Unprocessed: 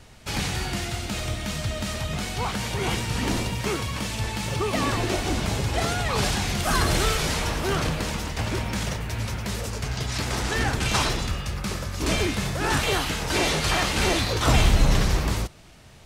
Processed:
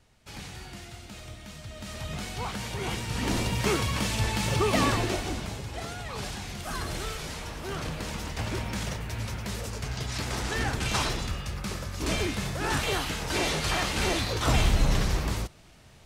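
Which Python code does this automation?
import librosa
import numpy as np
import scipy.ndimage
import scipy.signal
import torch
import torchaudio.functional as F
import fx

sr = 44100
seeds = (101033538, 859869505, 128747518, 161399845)

y = fx.gain(x, sr, db=fx.line((1.66, -14.0), (2.08, -6.0), (3.0, -6.0), (3.63, 1.0), (4.82, 1.0), (5.62, -11.5), (7.52, -11.5), (8.29, -4.5)))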